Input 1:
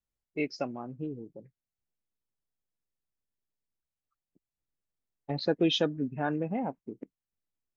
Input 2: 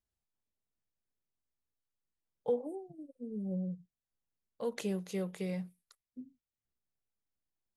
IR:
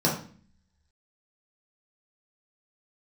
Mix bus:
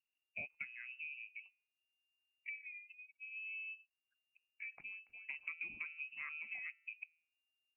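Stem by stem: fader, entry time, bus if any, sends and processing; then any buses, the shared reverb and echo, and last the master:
-2.5 dB, 0.00 s, no send, high shelf 2500 Hz -11.5 dB; de-hum 161.3 Hz, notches 9
-8.5 dB, 0.00 s, no send, tilt shelf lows +7 dB, about 760 Hz; auto duck -14 dB, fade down 0.65 s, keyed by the first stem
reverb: off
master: harmonic-percussive split harmonic -5 dB; inverted band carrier 2800 Hz; compressor 4:1, threshold -44 dBFS, peak gain reduction 14.5 dB

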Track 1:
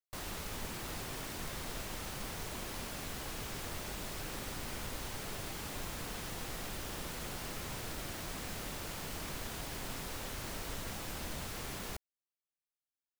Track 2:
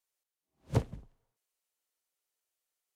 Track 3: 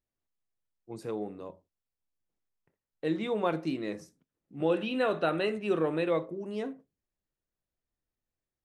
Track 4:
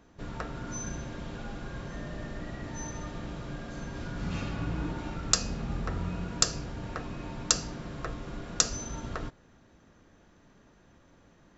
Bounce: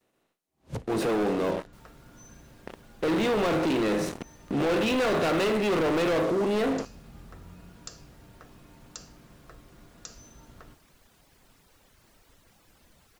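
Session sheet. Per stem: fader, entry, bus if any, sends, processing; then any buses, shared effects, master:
-17.0 dB, 1.60 s, no send, reverb removal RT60 0.83 s
+2.0 dB, 0.00 s, no send, compressor 6:1, threshold -33 dBFS, peak gain reduction 11 dB
+1.0 dB, 0.00 s, no send, per-bin compression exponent 0.6; gate with hold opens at -54 dBFS; sample leveller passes 5
-14.5 dB, 1.45 s, no send, dry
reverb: off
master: limiter -22 dBFS, peak gain reduction 10.5 dB

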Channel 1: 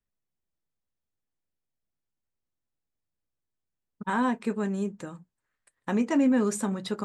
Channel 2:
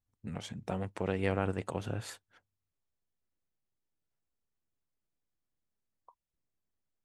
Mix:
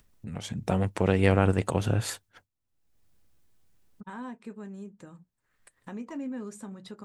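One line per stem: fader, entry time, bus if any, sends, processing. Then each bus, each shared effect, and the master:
-15.0 dB, 0.00 s, no send, dry
-3.0 dB, 0.00 s, no send, expander -59 dBFS; high shelf 4900 Hz +5.5 dB; AGC gain up to 11 dB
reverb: off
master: low shelf 190 Hz +5.5 dB; upward compressor, threshold -38 dBFS

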